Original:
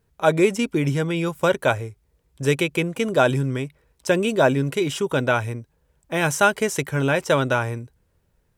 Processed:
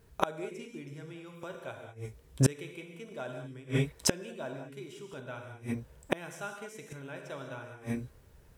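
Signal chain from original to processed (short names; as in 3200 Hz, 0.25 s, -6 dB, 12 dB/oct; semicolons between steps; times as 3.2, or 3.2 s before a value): non-linear reverb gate 0.23 s flat, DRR 3 dB; flipped gate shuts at -17 dBFS, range -30 dB; gain +6 dB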